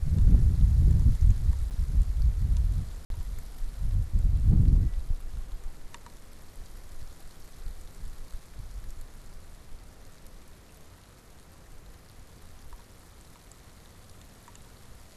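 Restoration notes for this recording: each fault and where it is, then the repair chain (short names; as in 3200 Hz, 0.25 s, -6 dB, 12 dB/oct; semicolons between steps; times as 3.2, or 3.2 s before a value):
1.7–1.71 gap 8.9 ms
3.05–3.1 gap 52 ms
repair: interpolate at 1.7, 8.9 ms; interpolate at 3.05, 52 ms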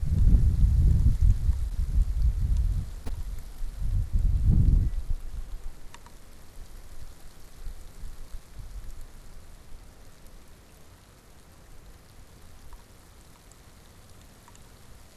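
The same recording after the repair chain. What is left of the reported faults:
none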